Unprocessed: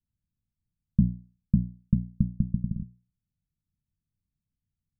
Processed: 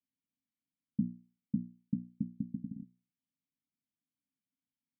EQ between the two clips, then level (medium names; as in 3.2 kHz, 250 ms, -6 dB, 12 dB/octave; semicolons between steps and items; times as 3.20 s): vowel filter i; high-pass 180 Hz 6 dB/octave; +7.0 dB